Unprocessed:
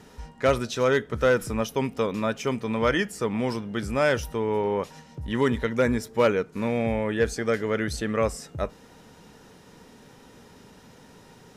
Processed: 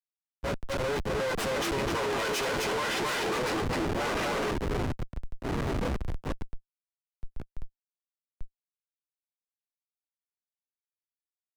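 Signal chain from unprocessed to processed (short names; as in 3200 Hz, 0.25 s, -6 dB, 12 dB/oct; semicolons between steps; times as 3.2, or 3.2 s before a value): minimum comb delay 9.5 ms; Doppler pass-by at 2.38, 9 m/s, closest 3.8 m; HPF 280 Hz 12 dB/oct; comb 2 ms, depth 82%; flange 0.64 Hz, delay 9.9 ms, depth 8.7 ms, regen -46%; echoes that change speed 0.5 s, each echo -4 st, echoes 3, each echo -6 dB; tilt +4 dB/oct; echo 0.257 s -3.5 dB; Schmitt trigger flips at -35 dBFS; high shelf 5800 Hz -12 dB; sample leveller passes 2; three-band expander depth 70%; gain +5.5 dB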